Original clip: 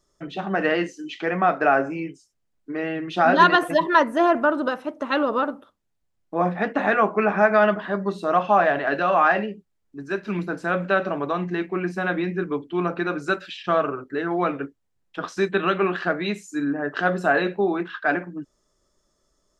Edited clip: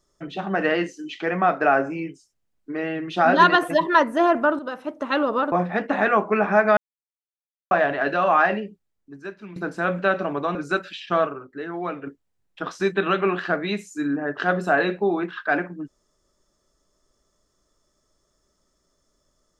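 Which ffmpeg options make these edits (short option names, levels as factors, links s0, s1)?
-filter_complex "[0:a]asplit=9[s0][s1][s2][s3][s4][s5][s6][s7][s8];[s0]atrim=end=4.59,asetpts=PTS-STARTPTS,afade=t=out:st=4.586:d=0.004:c=hsin:silence=0.237137[s9];[s1]atrim=start=4.59:end=5.522,asetpts=PTS-STARTPTS,afade=t=in:d=0.32:silence=0.237137[s10];[s2]atrim=start=6.378:end=7.63,asetpts=PTS-STARTPTS,afade=t=out:st=1.248:d=0.004:c=hsin[s11];[s3]atrim=start=7.63:end=8.57,asetpts=PTS-STARTPTS,volume=0[s12];[s4]atrim=start=8.57:end=10.42,asetpts=PTS-STARTPTS,afade=t=in:d=0.004:c=hsin,afade=t=out:st=0.86:d=0.99:silence=0.158489[s13];[s5]atrim=start=10.42:end=11.412,asetpts=PTS-STARTPTS,afade=t=in:d=0.004:c=hsin:silence=0.158489[s14];[s6]atrim=start=13.118:end=13.842[s15];[s7]atrim=start=13.838:end=14.642,asetpts=PTS-STARTPTS,volume=0.501[s16];[s8]atrim=start=14.638[s17];[s9][s10]concat=n=2:v=0:a=1[s18];[s11][s12][s13][s14]concat=n=4:v=0:a=1[s19];[s18][s19]acrossfade=d=0.004:c1=hsin:c2=hsin[s20];[s20][s15]acrossfade=d=0.004:c1=hsin:c2=hsin[s21];[s21][s16]acrossfade=d=0.004:c1=hsin:c2=hsin[s22];[s22][s17]acrossfade=d=0.004:c1=hsin:c2=hsin"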